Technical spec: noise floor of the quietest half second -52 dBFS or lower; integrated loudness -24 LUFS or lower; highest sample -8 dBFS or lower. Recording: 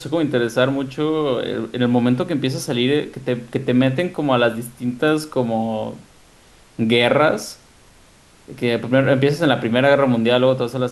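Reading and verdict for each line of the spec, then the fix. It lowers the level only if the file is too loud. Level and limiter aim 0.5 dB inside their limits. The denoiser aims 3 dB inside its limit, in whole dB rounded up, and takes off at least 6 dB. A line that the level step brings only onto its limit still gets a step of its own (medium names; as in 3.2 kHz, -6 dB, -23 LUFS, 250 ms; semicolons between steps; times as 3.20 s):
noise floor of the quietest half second -50 dBFS: fail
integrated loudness -19.0 LUFS: fail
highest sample -2.0 dBFS: fail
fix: trim -5.5 dB; peak limiter -8.5 dBFS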